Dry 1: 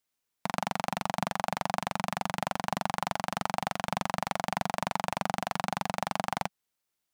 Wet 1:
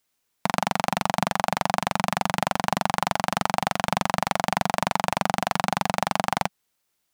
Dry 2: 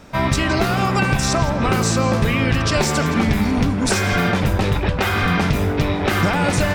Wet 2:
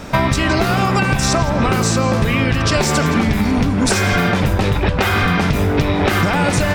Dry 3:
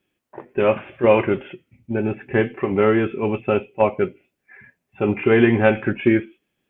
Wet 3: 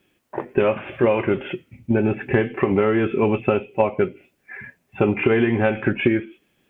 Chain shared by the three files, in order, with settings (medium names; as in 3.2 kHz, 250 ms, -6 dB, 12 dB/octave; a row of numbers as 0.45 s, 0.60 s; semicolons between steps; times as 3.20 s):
compression 10:1, threshold -24 dBFS; peak normalisation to -2 dBFS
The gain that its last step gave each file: +8.5 dB, +12.0 dB, +9.0 dB